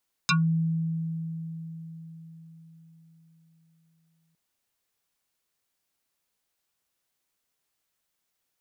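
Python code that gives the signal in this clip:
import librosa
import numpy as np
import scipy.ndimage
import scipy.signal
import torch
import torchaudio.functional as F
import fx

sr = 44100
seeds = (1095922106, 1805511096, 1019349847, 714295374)

y = fx.fm2(sr, length_s=4.06, level_db=-18.5, carrier_hz=163.0, ratio=7.84, index=5.8, index_s=0.15, decay_s=4.84, shape='exponential')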